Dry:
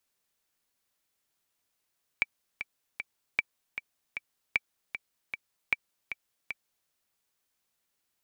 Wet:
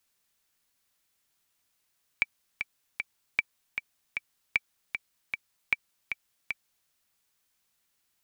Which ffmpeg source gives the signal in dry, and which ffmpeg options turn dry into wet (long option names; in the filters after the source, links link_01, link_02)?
-f lavfi -i "aevalsrc='pow(10,(-11-10*gte(mod(t,3*60/154),60/154))/20)*sin(2*PI*2320*mod(t,60/154))*exp(-6.91*mod(t,60/154)/0.03)':duration=4.67:sample_rate=44100"
-filter_complex "[0:a]equalizer=frequency=480:width=0.67:gain=-4.5,asplit=2[link_01][link_02];[link_02]alimiter=limit=-22.5dB:level=0:latency=1:release=32,volume=-3dB[link_03];[link_01][link_03]amix=inputs=2:normalize=0"